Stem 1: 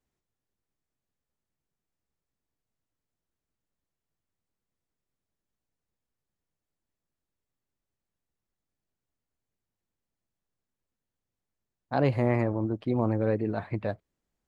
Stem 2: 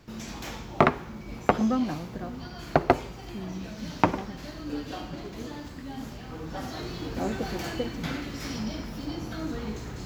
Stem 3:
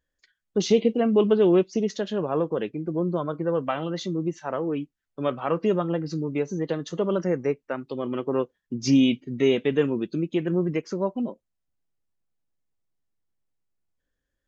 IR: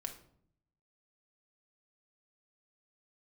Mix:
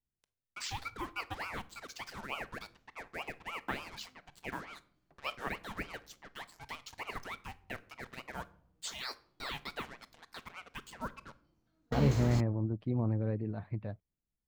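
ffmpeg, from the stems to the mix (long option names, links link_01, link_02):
-filter_complex "[0:a]bass=frequency=250:gain=11,treble=frequency=4000:gain=-2,dynaudnorm=framelen=620:gausssize=7:maxgain=11.5dB,volume=-16.5dB,asplit=2[link_01][link_02];[1:a]asoftclip=type=tanh:threshold=-14.5dB,adelay=2350,volume=2dB[link_03];[2:a]highpass=frequency=640:width=0.5412,highpass=frequency=640:width=1.3066,acrusher=bits=6:mix=0:aa=0.5,aeval=exprs='val(0)*sin(2*PI*1100*n/s+1100*0.7/3.4*sin(2*PI*3.4*n/s))':channel_layout=same,volume=-9dB,asplit=2[link_04][link_05];[link_05]volume=-3.5dB[link_06];[link_02]apad=whole_len=547083[link_07];[link_03][link_07]sidechaingate=range=-45dB:threshold=-46dB:ratio=16:detection=peak[link_08];[3:a]atrim=start_sample=2205[link_09];[link_06][link_09]afir=irnorm=-1:irlink=0[link_10];[link_01][link_08][link_04][link_10]amix=inputs=4:normalize=0"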